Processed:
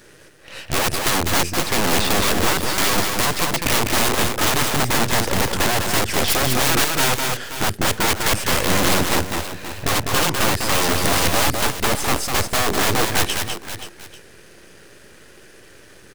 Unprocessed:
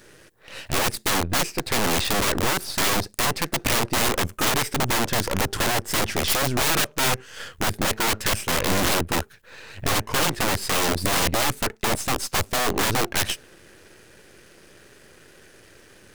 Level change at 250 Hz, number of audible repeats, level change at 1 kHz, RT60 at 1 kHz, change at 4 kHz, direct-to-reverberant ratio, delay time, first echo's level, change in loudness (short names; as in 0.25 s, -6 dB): +4.0 dB, 3, +4.0 dB, none, +4.0 dB, none, 0.201 s, -4.5 dB, +4.0 dB